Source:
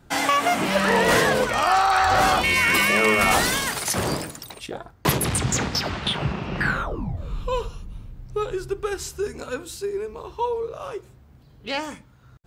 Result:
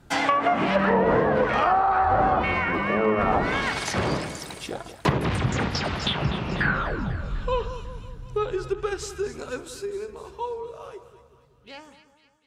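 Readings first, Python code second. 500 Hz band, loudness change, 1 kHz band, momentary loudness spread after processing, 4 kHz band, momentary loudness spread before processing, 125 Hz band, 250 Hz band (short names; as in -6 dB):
-0.5 dB, -2.5 dB, -1.5 dB, 15 LU, -6.5 dB, 17 LU, +0.5 dB, +0.5 dB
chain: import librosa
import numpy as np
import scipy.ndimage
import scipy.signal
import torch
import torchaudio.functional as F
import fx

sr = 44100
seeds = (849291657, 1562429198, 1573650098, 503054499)

y = fx.fade_out_tail(x, sr, length_s=4.01)
y = fx.echo_split(y, sr, split_hz=1300.0, low_ms=185, high_ms=248, feedback_pct=52, wet_db=-12.5)
y = fx.env_lowpass_down(y, sr, base_hz=1000.0, full_db=-14.5)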